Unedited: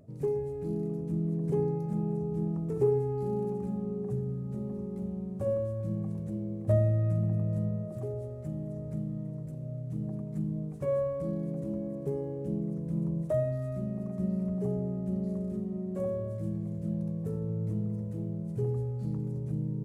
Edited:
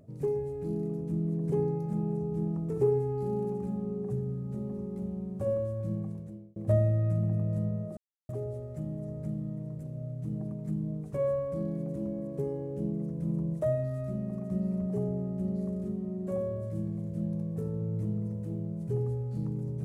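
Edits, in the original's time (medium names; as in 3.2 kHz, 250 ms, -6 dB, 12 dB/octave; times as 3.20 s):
5.94–6.56 s: fade out
7.97 s: insert silence 0.32 s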